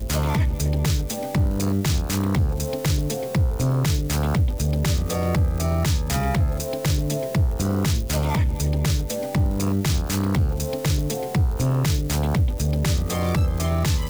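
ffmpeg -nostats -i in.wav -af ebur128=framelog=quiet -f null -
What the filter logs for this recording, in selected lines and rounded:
Integrated loudness:
  I:         -22.9 LUFS
  Threshold: -32.9 LUFS
Loudness range:
  LRA:         0.6 LU
  Threshold: -43.0 LUFS
  LRA low:   -23.3 LUFS
  LRA high:  -22.7 LUFS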